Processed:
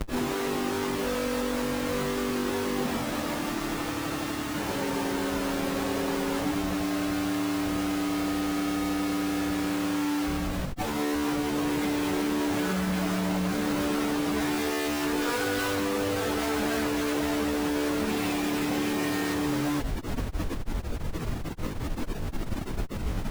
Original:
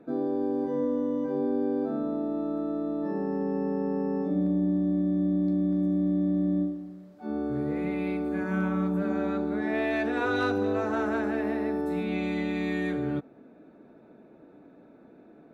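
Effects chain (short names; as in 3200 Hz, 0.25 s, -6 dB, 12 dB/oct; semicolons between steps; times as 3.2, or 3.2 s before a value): Schmitt trigger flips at -47 dBFS; plain phase-vocoder stretch 1.5×; gain +3 dB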